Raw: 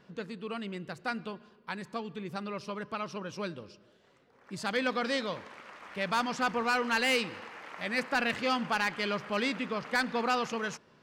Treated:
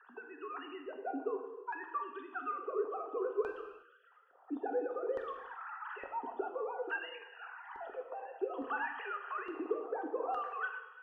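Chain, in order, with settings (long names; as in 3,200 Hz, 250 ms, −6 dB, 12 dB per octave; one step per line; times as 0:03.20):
three sine waves on the formant tracks
dynamic equaliser 1,400 Hz, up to −6 dB, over −43 dBFS, Q 1.5
downward compressor, threshold −40 dBFS, peak gain reduction 17.5 dB
auto-filter band-pass square 0.58 Hz 500–1,700 Hz
phaser with its sweep stopped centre 580 Hz, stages 6
reverb whose tail is shaped and stops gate 390 ms falling, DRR 3.5 dB
0:06.11–0:08.57: phaser whose notches keep moving one way falling 2 Hz
level +15 dB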